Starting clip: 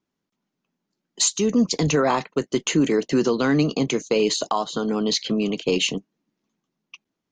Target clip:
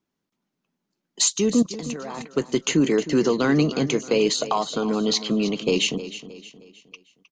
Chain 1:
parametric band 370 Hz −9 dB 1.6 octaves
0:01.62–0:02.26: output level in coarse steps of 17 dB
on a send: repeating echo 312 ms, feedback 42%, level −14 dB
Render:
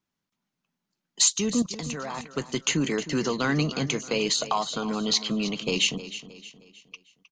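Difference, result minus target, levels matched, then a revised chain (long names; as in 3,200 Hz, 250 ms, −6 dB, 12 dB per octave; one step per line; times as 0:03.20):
500 Hz band −4.5 dB
0:01.62–0:02.26: output level in coarse steps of 17 dB
on a send: repeating echo 312 ms, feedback 42%, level −14 dB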